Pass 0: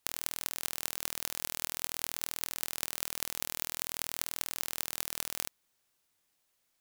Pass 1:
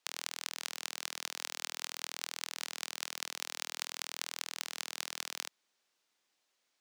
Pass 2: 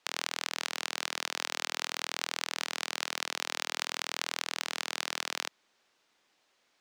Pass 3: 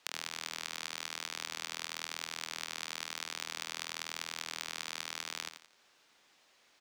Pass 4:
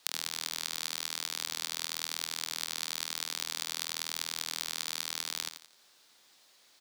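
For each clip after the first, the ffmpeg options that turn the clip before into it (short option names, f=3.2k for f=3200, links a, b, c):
-filter_complex "[0:a]acrossover=split=840|5500[a][b][c];[a]alimiter=level_in=17dB:limit=-24dB:level=0:latency=1,volume=-17dB[d];[d][b][c]amix=inputs=3:normalize=0,crystalizer=i=1:c=0,acrossover=split=200 6400:gain=0.112 1 0.0794[e][f][g];[e][f][g]amix=inputs=3:normalize=0"
-filter_complex "[0:a]lowpass=f=3.1k:p=1,asplit=2[a][b];[b]alimiter=level_in=2dB:limit=-24dB:level=0:latency=1:release=110,volume=-2dB,volume=3dB[c];[a][c]amix=inputs=2:normalize=0,volume=3.5dB"
-af "equalizer=f=430:w=0.44:g=-2.5,acompressor=threshold=-49dB:ratio=2,aecho=1:1:86|172|258|344:0.335|0.121|0.0434|0.0156,volume=5.5dB"
-af "aexciter=amount=2.7:drive=3.5:freq=3.6k"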